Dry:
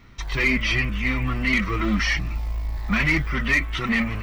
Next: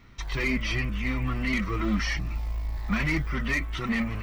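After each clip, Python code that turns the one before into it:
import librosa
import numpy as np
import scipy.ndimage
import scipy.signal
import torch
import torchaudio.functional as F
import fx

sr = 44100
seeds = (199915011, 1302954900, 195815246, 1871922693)

y = fx.dynamic_eq(x, sr, hz=2400.0, q=0.8, threshold_db=-33.0, ratio=4.0, max_db=-5)
y = y * 10.0 ** (-3.5 / 20.0)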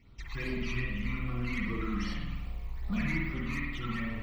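y = fx.phaser_stages(x, sr, stages=12, low_hz=520.0, high_hz=2300.0, hz=2.5, feedback_pct=25)
y = fx.rev_spring(y, sr, rt60_s=1.1, pass_ms=(49,), chirp_ms=70, drr_db=-2.0)
y = y * 10.0 ** (-8.0 / 20.0)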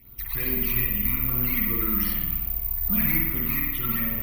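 y = (np.kron(scipy.signal.resample_poly(x, 1, 3), np.eye(3)[0]) * 3)[:len(x)]
y = y * 10.0 ** (3.5 / 20.0)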